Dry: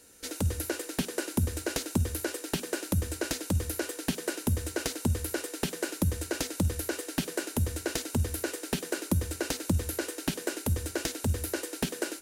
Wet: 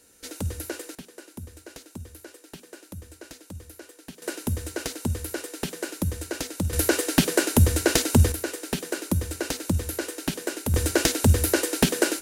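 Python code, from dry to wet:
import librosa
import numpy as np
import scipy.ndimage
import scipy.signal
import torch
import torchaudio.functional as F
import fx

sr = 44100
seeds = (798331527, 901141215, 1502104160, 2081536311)

y = fx.gain(x, sr, db=fx.steps((0.0, -1.0), (0.95, -12.0), (4.22, 0.5), (6.73, 11.0), (8.32, 2.5), (10.74, 10.5)))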